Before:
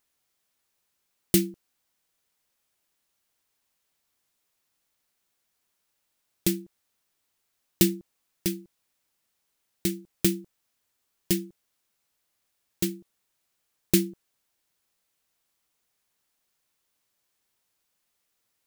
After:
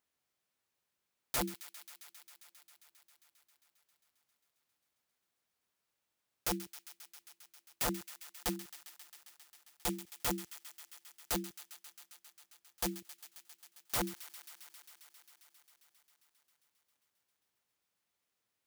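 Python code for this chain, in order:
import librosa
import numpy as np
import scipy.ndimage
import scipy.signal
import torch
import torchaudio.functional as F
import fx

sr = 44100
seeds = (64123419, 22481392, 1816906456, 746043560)

y = scipy.signal.sosfilt(scipy.signal.butter(2, 57.0, 'highpass', fs=sr, output='sos'), x)
y = fx.high_shelf(y, sr, hz=4000.0, db=-6.5)
y = (np.mod(10.0 ** (22.0 / 20.0) * y + 1.0, 2.0) - 1.0) / 10.0 ** (22.0 / 20.0)
y = fx.echo_wet_highpass(y, sr, ms=134, feedback_pct=84, hz=1600.0, wet_db=-13.5)
y = F.gain(torch.from_numpy(y), -5.0).numpy()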